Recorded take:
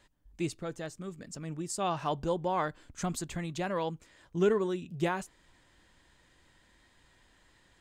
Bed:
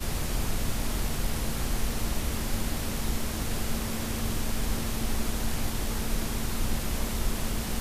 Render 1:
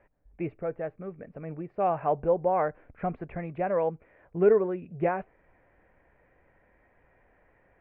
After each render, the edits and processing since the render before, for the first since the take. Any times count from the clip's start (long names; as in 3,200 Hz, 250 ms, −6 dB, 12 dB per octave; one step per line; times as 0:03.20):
Chebyshev low-pass filter 2,400 Hz, order 5
flat-topped bell 570 Hz +9 dB 1.1 octaves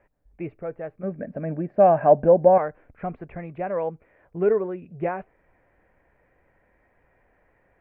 0:01.03–0:02.58: hollow resonant body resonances 230/590/1,600 Hz, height 14 dB, ringing for 20 ms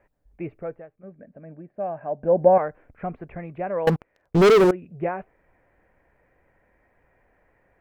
0:00.67–0:02.40: duck −13.5 dB, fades 0.20 s
0:03.87–0:04.71: leveller curve on the samples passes 5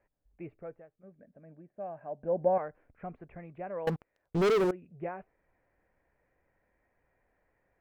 level −11 dB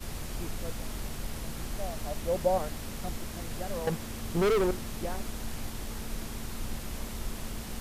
mix in bed −7.5 dB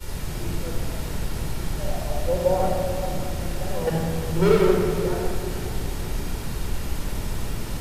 feedback delay with all-pass diffusion 472 ms, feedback 48%, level −15 dB
rectangular room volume 3,600 cubic metres, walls mixed, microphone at 4.5 metres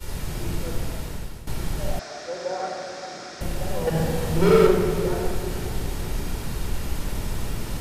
0:00.62–0:01.47: fade out equal-power, to −15.5 dB
0:01.99–0:03.41: loudspeaker in its box 460–6,600 Hz, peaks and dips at 550 Hz −7 dB, 920 Hz −8 dB, 1,500 Hz +5 dB, 2,900 Hz −8 dB, 5,400 Hz +6 dB
0:03.91–0:04.67: flutter between parallel walls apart 7.7 metres, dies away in 0.69 s